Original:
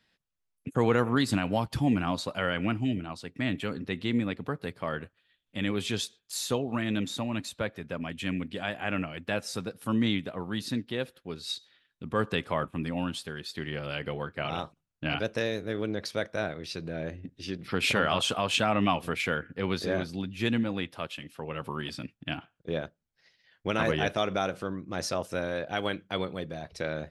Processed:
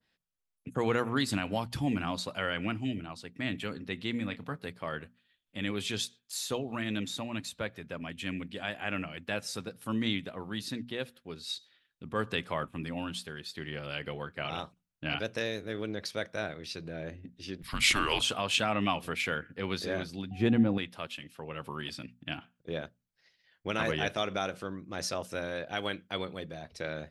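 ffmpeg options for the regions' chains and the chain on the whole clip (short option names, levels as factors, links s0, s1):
-filter_complex "[0:a]asettb=1/sr,asplit=3[s0][s1][s2];[s0]atrim=end=4.114[s3];[s1]atrim=start=4.11:end=4.55,asetpts=PTS-STARTPTS,afade=t=in:d=0.004:c=qsin,afade=t=out:st=0.436:d=0.004:c=qsin,equalizer=f=380:w=6.1:g=-13,asplit=2[s4][s5];[s5]adelay=29,volume=0.224[s6];[s4][s6]amix=inputs=2:normalize=0,atrim=end_sample=19404[s7];[s2]atrim=start=4.546[s8];[s3][s7]acrossfade=d=0.004:c1=hsin:c2=qsin[s9];[s9][s8]acrossfade=d=0.004:c1=qsin:c2=hsin,asettb=1/sr,asplit=3[s10][s11][s12];[s10]atrim=end=17.624[s13];[s11]atrim=start=17.62:end=18.21,asetpts=PTS-STARTPTS,afade=t=in:d=0.004:c=qsin,afade=t=out:st=0.586:d=0.004:c=qsin,afreqshift=-220,aemphasis=mode=production:type=75fm,acrossover=split=8100[s14][s15];[s15]acompressor=threshold=0.00562:ratio=4:attack=1:release=60[s16];[s14][s16]amix=inputs=2:normalize=0[s17];[s12]atrim=start=18.206[s18];[s13][s17]acrossfade=d=0.004:c1=hsin:c2=qsin[s19];[s19][s18]acrossfade=d=0.004:c1=qsin:c2=hsin,asettb=1/sr,asplit=3[s20][s21][s22];[s20]atrim=end=20.314[s23];[s21]atrim=start=20.31:end=20.78,asetpts=PTS-STARTPTS,afade=t=in:d=0.004:c=qsin,afade=t=out:st=0.466:d=0.004:c=qsin,tiltshelf=f=1400:g=9,aeval=exprs='val(0)+0.00501*sin(2*PI*740*n/s)':c=same[s24];[s22]atrim=start=20.776[s25];[s23][s24]acrossfade=d=0.004:c1=hsin:c2=qsin[s26];[s26][s25]acrossfade=d=0.004:c1=qsin:c2=hsin,bandreject=f=60:t=h:w=6,bandreject=f=120:t=h:w=6,bandreject=f=180:t=h:w=6,bandreject=f=240:t=h:w=6,adynamicequalizer=threshold=0.0112:dfrequency=1500:dqfactor=0.7:tfrequency=1500:tqfactor=0.7:attack=5:release=100:ratio=0.375:range=2:mode=boostabove:tftype=highshelf,volume=0.596"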